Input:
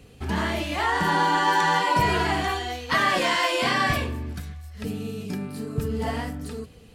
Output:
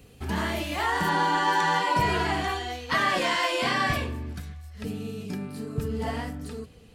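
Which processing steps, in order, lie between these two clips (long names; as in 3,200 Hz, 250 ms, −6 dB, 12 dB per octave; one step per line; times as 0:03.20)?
high-shelf EQ 12,000 Hz +10.5 dB, from 0:01.09 −3.5 dB
level −2.5 dB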